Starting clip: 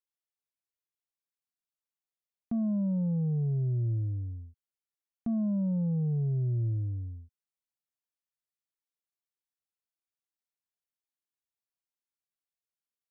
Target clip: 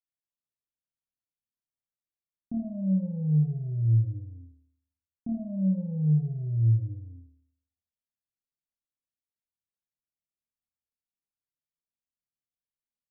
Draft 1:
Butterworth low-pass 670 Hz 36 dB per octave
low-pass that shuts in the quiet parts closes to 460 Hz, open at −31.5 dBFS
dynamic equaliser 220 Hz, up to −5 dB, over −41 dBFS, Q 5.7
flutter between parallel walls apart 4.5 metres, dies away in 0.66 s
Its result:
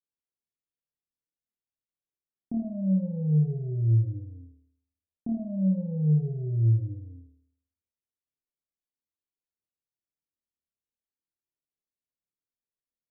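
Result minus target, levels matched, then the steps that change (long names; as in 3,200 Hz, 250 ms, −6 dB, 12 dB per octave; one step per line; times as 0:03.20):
500 Hz band +5.0 dB
add after Butterworth low-pass: parametric band 400 Hz −12.5 dB 0.58 octaves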